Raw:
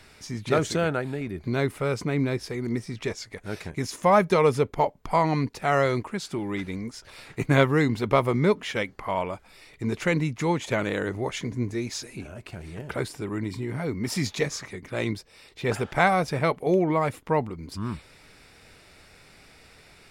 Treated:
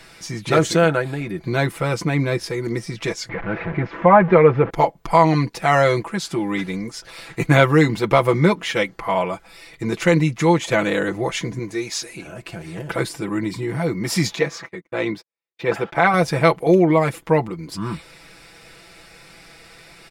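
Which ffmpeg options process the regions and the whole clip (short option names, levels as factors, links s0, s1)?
-filter_complex "[0:a]asettb=1/sr,asplit=3[s0][s1][s2];[s0]atrim=end=3.294[s3];[s1]atrim=start=3.29:end=4.7,asetpts=PTS-STARTPTS,afade=t=in:d=0.004:c=qsin,afade=t=out:st=1.406:d=0.004:c=qsin,aeval=exprs='val(0)+0.5*0.0299*sgn(val(0))':c=same,lowpass=f=2100:w=0.5412,lowpass=f=2100:w=1.3066[s4];[s2]atrim=start=4.696[s5];[s3][s4]acrossfade=d=0.004:c1=hsin:c2=qsin[s6];[s6][s5]acrossfade=d=0.004:c1=qsin:c2=hsin,asettb=1/sr,asplit=3[s7][s8][s9];[s7]atrim=end=11.594[s10];[s8]atrim=start=11.59:end=12.27,asetpts=PTS-STARTPTS,afade=t=in:d=0.004:c=qsin,afade=t=out:st=0.676:d=0.004:c=qsin,lowshelf=f=310:g=-8.5,deesser=0.45[s11];[s9]atrim=start=12.266[s12];[s10][s11]acrossfade=d=0.004:c1=hsin:c2=qsin[s13];[s13][s12]acrossfade=d=0.004:c1=qsin:c2=hsin,asettb=1/sr,asplit=3[s14][s15][s16];[s14]atrim=end=14.364[s17];[s15]atrim=start=14.36:end=16.14,asetpts=PTS-STARTPTS,afade=t=in:d=0.004:c=qsin,afade=t=out:st=1.776:d=0.004:c=qsin,highpass=f=230:p=1,agate=range=0.00447:threshold=0.00708:ratio=16:release=100:detection=peak,equalizer=f=9600:t=o:w=1.9:g=-14.5[s18];[s16]atrim=start=16.136[s19];[s17][s18]acrossfade=d=0.004:c1=hsin:c2=qsin[s20];[s20][s19]acrossfade=d=0.004:c1=qsin:c2=hsin,lowshelf=f=190:g=-4,aecho=1:1:6:0.7,alimiter=level_in=2.24:limit=0.891:release=50:level=0:latency=1,volume=0.891"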